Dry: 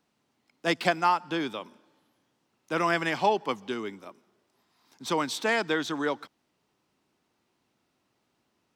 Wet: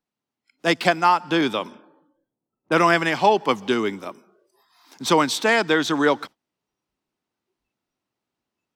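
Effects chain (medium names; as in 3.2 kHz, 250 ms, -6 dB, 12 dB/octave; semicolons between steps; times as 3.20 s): spectral noise reduction 20 dB; gain riding within 3 dB 0.5 s; 1.41–2.72 s: level-controlled noise filter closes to 610 Hz, open at -30.5 dBFS; trim +8.5 dB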